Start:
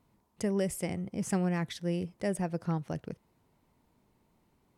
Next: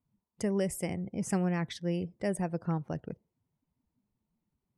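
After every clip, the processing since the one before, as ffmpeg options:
-af "afftdn=nr=19:nf=-55"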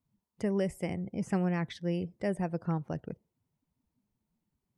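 -filter_complex "[0:a]acrossover=split=3800[a][b];[b]acompressor=threshold=-52dB:ratio=4:attack=1:release=60[c];[a][c]amix=inputs=2:normalize=0"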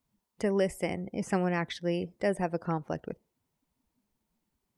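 -af "equalizer=f=120:w=0.74:g=-10.5,volume=6dB"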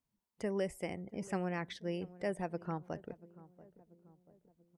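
-filter_complex "[0:a]asplit=2[a][b];[b]adelay=686,lowpass=f=860:p=1,volume=-18dB,asplit=2[c][d];[d]adelay=686,lowpass=f=860:p=1,volume=0.54,asplit=2[e][f];[f]adelay=686,lowpass=f=860:p=1,volume=0.54,asplit=2[g][h];[h]adelay=686,lowpass=f=860:p=1,volume=0.54,asplit=2[i][j];[j]adelay=686,lowpass=f=860:p=1,volume=0.54[k];[a][c][e][g][i][k]amix=inputs=6:normalize=0,volume=-8dB"

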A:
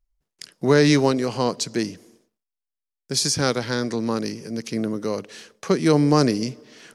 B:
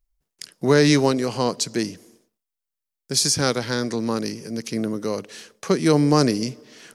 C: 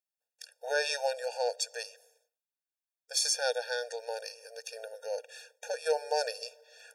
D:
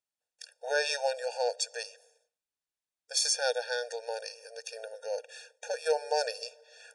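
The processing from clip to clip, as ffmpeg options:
-af "highshelf=f=8.2k:g=7"
-af "afftfilt=real='re*eq(mod(floor(b*sr/1024/470),2),1)':imag='im*eq(mod(floor(b*sr/1024/470),2),1)':win_size=1024:overlap=0.75,volume=-5.5dB"
-af "aresample=22050,aresample=44100,volume=1dB"

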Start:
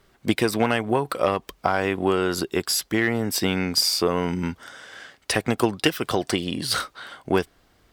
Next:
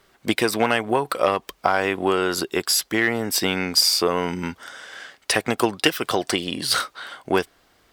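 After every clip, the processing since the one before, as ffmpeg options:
-af "lowshelf=f=250:g=-10,volume=3.5dB"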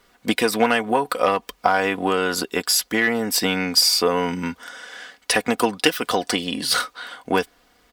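-af "aecho=1:1:4.1:0.55"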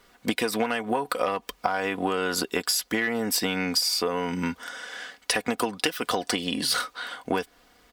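-af "acompressor=threshold=-22dB:ratio=6"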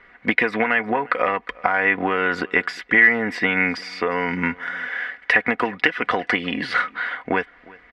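-af "lowpass=f=2k:t=q:w=4.6,aecho=1:1:356:0.0668,volume=3dB"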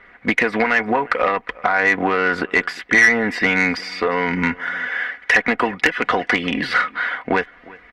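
-af "asoftclip=type=tanh:threshold=-9.5dB,volume=4dB" -ar 48000 -c:a libopus -b:a 20k

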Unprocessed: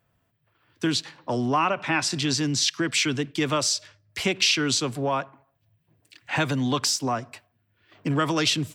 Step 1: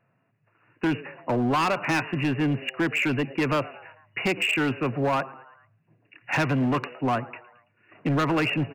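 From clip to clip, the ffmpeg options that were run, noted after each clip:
-filter_complex "[0:a]asplit=5[a][b][c][d][e];[b]adelay=111,afreqshift=120,volume=-21.5dB[f];[c]adelay=222,afreqshift=240,volume=-26.4dB[g];[d]adelay=333,afreqshift=360,volume=-31.3dB[h];[e]adelay=444,afreqshift=480,volume=-36.1dB[i];[a][f][g][h][i]amix=inputs=5:normalize=0,afftfilt=real='re*between(b*sr/4096,100,2900)':imag='im*between(b*sr/4096,100,2900)':win_size=4096:overlap=0.75,asoftclip=type=hard:threshold=-22.5dB,volume=3dB"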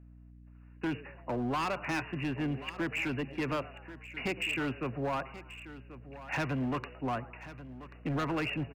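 -af "aeval=exprs='val(0)+0.00708*(sin(2*PI*60*n/s)+sin(2*PI*2*60*n/s)/2+sin(2*PI*3*60*n/s)/3+sin(2*PI*4*60*n/s)/4+sin(2*PI*5*60*n/s)/5)':c=same,aecho=1:1:1085:0.178,volume=-9dB"

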